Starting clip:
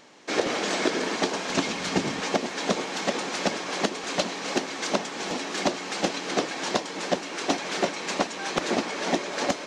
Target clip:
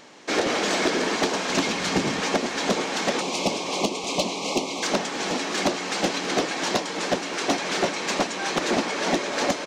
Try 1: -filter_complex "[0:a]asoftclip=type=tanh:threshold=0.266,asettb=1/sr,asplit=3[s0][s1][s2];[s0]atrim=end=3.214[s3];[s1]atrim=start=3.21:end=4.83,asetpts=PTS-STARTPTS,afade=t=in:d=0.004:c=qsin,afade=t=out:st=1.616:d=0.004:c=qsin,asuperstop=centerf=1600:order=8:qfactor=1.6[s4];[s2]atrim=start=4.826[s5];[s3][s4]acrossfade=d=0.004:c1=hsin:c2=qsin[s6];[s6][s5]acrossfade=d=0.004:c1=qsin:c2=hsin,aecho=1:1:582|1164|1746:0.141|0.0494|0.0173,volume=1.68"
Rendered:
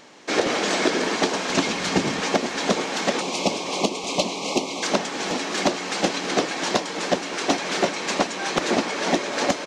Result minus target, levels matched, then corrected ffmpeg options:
saturation: distortion -10 dB
-filter_complex "[0:a]asoftclip=type=tanh:threshold=0.112,asettb=1/sr,asplit=3[s0][s1][s2];[s0]atrim=end=3.214[s3];[s1]atrim=start=3.21:end=4.83,asetpts=PTS-STARTPTS,afade=t=in:d=0.004:c=qsin,afade=t=out:st=1.616:d=0.004:c=qsin,asuperstop=centerf=1600:order=8:qfactor=1.6[s4];[s2]atrim=start=4.826[s5];[s3][s4]acrossfade=d=0.004:c1=hsin:c2=qsin[s6];[s6][s5]acrossfade=d=0.004:c1=qsin:c2=hsin,aecho=1:1:582|1164|1746:0.141|0.0494|0.0173,volume=1.68"

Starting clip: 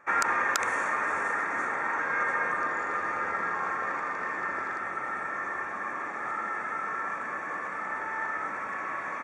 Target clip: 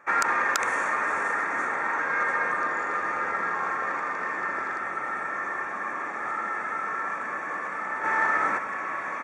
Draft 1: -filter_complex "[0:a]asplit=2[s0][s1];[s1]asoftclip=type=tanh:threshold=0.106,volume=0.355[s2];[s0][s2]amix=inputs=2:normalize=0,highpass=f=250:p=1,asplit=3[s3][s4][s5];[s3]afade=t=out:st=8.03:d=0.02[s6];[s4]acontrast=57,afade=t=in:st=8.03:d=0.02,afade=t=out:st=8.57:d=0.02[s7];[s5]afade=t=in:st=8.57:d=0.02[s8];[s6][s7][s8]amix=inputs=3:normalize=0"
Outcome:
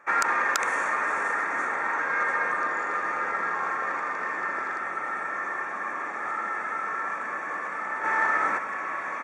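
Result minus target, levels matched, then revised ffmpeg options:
125 Hz band -3.5 dB
-filter_complex "[0:a]asplit=2[s0][s1];[s1]asoftclip=type=tanh:threshold=0.106,volume=0.355[s2];[s0][s2]amix=inputs=2:normalize=0,highpass=f=120:p=1,asplit=3[s3][s4][s5];[s3]afade=t=out:st=8.03:d=0.02[s6];[s4]acontrast=57,afade=t=in:st=8.03:d=0.02,afade=t=out:st=8.57:d=0.02[s7];[s5]afade=t=in:st=8.57:d=0.02[s8];[s6][s7][s8]amix=inputs=3:normalize=0"

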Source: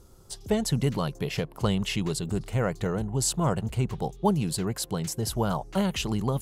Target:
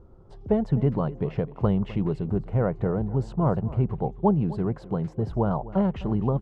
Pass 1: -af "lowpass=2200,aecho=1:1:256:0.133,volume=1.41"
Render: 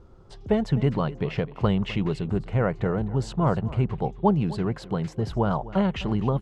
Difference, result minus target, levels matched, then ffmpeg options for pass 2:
2 kHz band +8.5 dB
-af "lowpass=1000,aecho=1:1:256:0.133,volume=1.41"

